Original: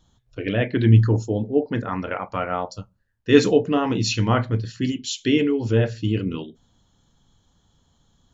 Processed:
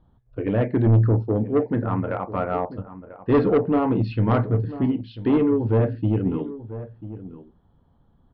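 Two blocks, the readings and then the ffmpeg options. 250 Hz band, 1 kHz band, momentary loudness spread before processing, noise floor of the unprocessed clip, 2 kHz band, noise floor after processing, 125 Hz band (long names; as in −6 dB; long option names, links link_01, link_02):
0.0 dB, 0.0 dB, 15 LU, −64 dBFS, −8.0 dB, −61 dBFS, −0.5 dB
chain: -filter_complex "[0:a]lowpass=1100,aresample=11025,asoftclip=type=tanh:threshold=-15.5dB,aresample=44100,asplit=2[link_01][link_02];[link_02]adelay=991.3,volume=-14dB,highshelf=frequency=4000:gain=-22.3[link_03];[link_01][link_03]amix=inputs=2:normalize=0,volume=3dB"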